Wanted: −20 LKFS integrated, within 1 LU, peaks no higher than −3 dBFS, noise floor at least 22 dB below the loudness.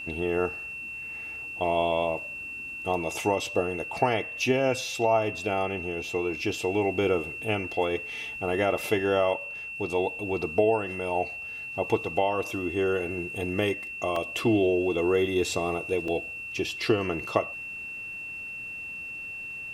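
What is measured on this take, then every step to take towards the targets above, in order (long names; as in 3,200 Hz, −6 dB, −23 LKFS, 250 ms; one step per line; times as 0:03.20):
number of dropouts 2; longest dropout 2.9 ms; interfering tone 2,700 Hz; level of the tone −35 dBFS; integrated loudness −28.0 LKFS; sample peak −7.5 dBFS; target loudness −20.0 LKFS
→ repair the gap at 0:14.16/0:16.08, 2.9 ms
notch filter 2,700 Hz, Q 30
level +8 dB
brickwall limiter −3 dBFS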